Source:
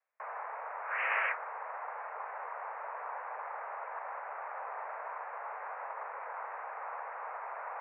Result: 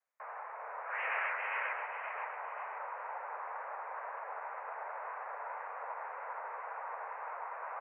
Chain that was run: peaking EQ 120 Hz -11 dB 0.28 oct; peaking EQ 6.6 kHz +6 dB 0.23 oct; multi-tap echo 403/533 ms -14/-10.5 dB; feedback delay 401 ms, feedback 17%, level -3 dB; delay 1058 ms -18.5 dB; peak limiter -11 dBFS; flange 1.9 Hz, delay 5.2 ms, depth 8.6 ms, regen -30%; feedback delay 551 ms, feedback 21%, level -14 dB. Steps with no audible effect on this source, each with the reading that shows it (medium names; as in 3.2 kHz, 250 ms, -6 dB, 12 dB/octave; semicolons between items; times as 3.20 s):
peaking EQ 120 Hz: input has nothing below 380 Hz; peaking EQ 6.6 kHz: input has nothing above 2.7 kHz; peak limiter -11 dBFS: peak at its input -17.5 dBFS